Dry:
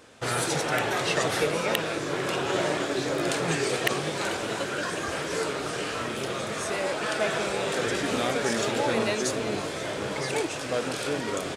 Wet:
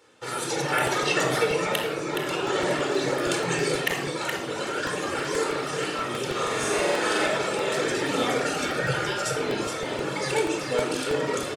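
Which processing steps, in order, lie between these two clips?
bass shelf 160 Hz -10 dB; 8.44–9.36 s: ring modulator 1 kHz; delay 420 ms -6 dB; reverb removal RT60 1.6 s; 6.31–7.26 s: flutter echo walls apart 7.7 m, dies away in 1.2 s; level rider gain up to 8 dB; high-pass 85 Hz; simulated room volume 3000 m³, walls furnished, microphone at 4.3 m; crackling interface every 0.16 s, samples 64, repeat, from 0.87 s; trim -7.5 dB

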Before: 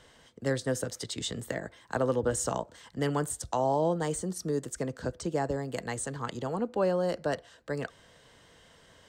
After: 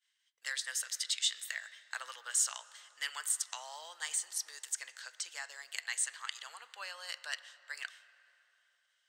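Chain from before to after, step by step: expander -44 dBFS; ladder high-pass 1.6 kHz, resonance 20%; reverberation RT60 3.3 s, pre-delay 6 ms, DRR 13.5 dB; trim +8.5 dB

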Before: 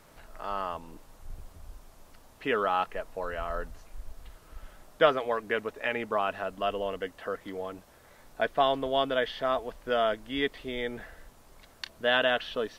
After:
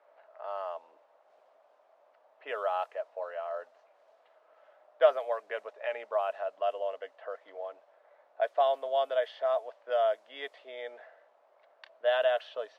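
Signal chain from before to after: level-controlled noise filter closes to 2 kHz, open at -22 dBFS; ladder high-pass 550 Hz, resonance 65%; trim +1.5 dB

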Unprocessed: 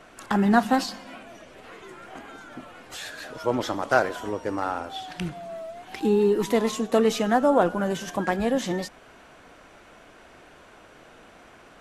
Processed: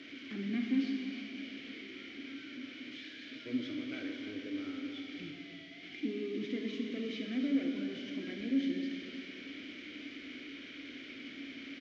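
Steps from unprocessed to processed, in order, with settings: one-bit delta coder 32 kbps, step -29.5 dBFS; peaking EQ 190 Hz -8 dB 0.38 oct; saturation -18 dBFS, distortion -12 dB; dynamic bell 110 Hz, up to +6 dB, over -48 dBFS, Q 1.2; vowel filter i; feedback delay 309 ms, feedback 56%, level -9.5 dB; Schroeder reverb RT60 2.1 s, combs from 29 ms, DRR 3 dB

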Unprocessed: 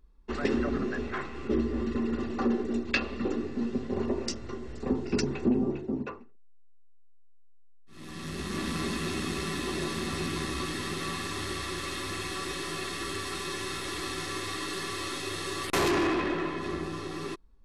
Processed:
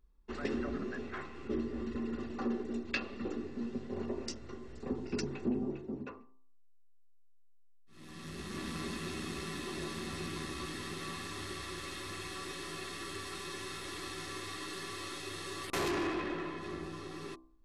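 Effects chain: de-hum 65.09 Hz, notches 18; trim -7.5 dB

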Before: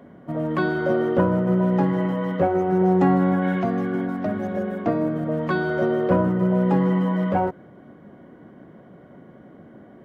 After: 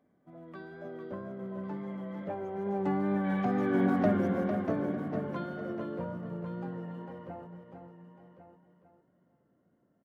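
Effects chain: Doppler pass-by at 3.95 s, 18 m/s, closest 4.4 m; feedback delay 451 ms, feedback 22%, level -8 dB; wow and flutter 28 cents; on a send: delay 1100 ms -12 dB

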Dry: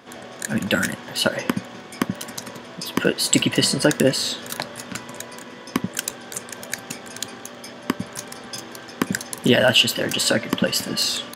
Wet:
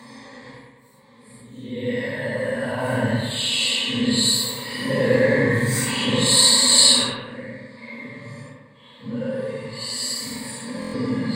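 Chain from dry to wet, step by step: peaking EQ 160 Hz +12.5 dB 0.25 oct; slow attack 793 ms; Paulstretch 6.6×, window 0.05 s, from 9.24 s; rippled EQ curve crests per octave 0.98, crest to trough 16 dB; on a send: bucket-brigade echo 98 ms, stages 2048, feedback 52%, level -3 dB; on the sum: buffer glitch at 10.80 s, samples 1024, times 5; trim +1 dB

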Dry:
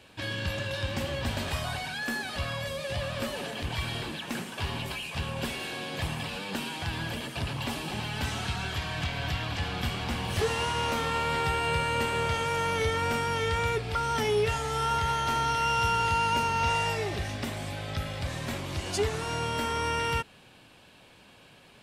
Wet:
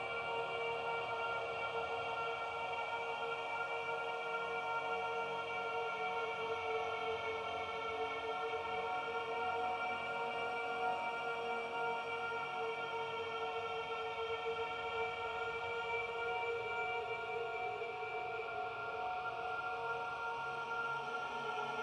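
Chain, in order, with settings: Paulstretch 11×, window 0.50 s, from 12.17 s; vowel filter a; trim +3.5 dB

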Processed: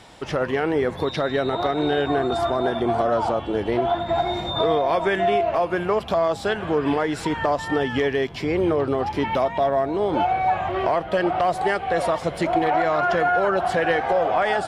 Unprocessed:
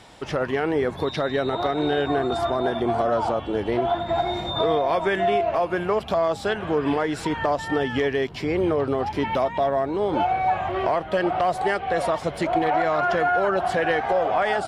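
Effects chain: feedback comb 170 Hz, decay 1.9 s, mix 50%; trim +7 dB

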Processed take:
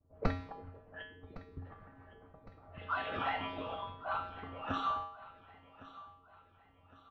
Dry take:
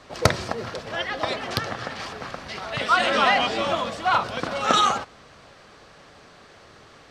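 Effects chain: gate with hold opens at -42 dBFS; level-controlled noise filter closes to 430 Hz, open at -18.5 dBFS; spectral noise reduction 9 dB; whisper effect; bass shelf 170 Hz +12 dB; time-frequency box 1.03–1.65 s, 480–11000 Hz -21 dB; distance through air 350 m; feedback comb 90 Hz, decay 0.58 s, harmonics odd, mix 90%; on a send: feedback delay 1110 ms, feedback 42%, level -17.5 dB

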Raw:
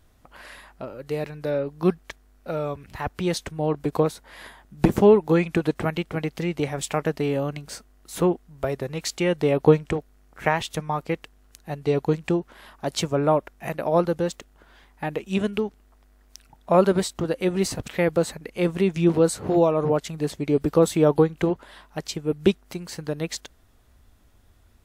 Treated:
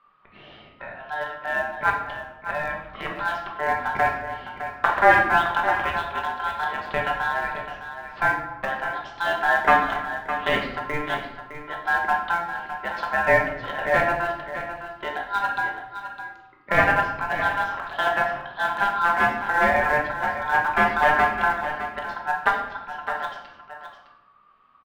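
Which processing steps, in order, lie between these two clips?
one-sided wavefolder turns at -15.5 dBFS; low-pass 2.6 kHz 24 dB/octave; in parallel at -12 dB: small samples zeroed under -18.5 dBFS; on the sum: delay 610 ms -10.5 dB; ring modulator 1.2 kHz; simulated room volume 310 m³, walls mixed, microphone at 1.2 m; trim -2 dB

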